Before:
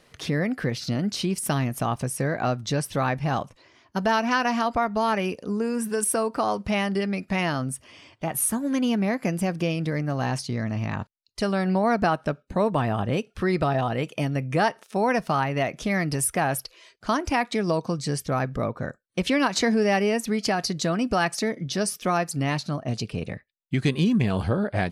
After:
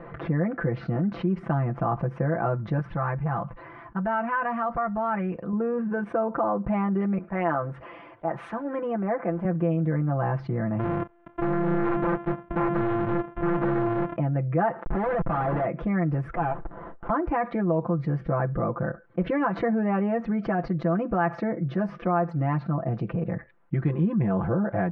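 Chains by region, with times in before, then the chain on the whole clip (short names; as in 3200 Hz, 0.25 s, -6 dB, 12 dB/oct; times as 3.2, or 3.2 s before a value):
2.79–5.53 bell 410 Hz -9 dB 2.1 oct + core saturation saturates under 670 Hz
7.18–9.45 G.711 law mismatch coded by mu + tone controls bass -13 dB, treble -3 dB + three-band expander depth 100%
10.79–14.16 sample sorter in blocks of 128 samples + synth low-pass 3300 Hz, resonance Q 2.9 + wrapped overs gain 17.5 dB
14.84–15.65 HPF 300 Hz 6 dB/oct + Schmitt trigger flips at -40.5 dBFS
16.36–17.1 de-esser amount 70% + HPF 640 Hz 24 dB/oct + running maximum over 17 samples
whole clip: LPF 1500 Hz 24 dB/oct; comb 5.9 ms, depth 87%; fast leveller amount 50%; gain -6.5 dB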